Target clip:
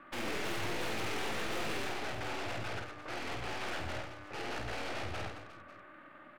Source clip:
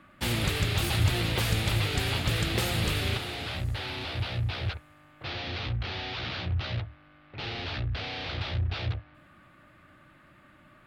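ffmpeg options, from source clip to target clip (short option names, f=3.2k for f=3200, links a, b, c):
-filter_complex "[0:a]acrossover=split=250 2500:gain=0.0891 1 0.141[a][b][c];[a][b][c]amix=inputs=3:normalize=0,atempo=1.7,aeval=exprs='(tanh(178*val(0)+0.65)-tanh(0.65))/178':c=same,asplit=2[d][e];[e]aecho=0:1:50|120|218|355.2|547.3:0.631|0.398|0.251|0.158|0.1[f];[d][f]amix=inputs=2:normalize=0,volume=7dB"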